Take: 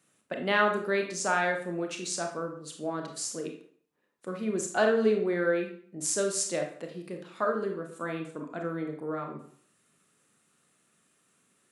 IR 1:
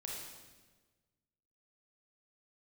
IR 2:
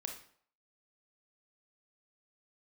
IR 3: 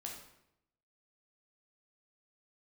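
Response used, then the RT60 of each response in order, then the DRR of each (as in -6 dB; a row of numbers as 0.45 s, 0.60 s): 2; 1.3 s, 0.55 s, 0.80 s; -3.0 dB, 2.5 dB, -1.0 dB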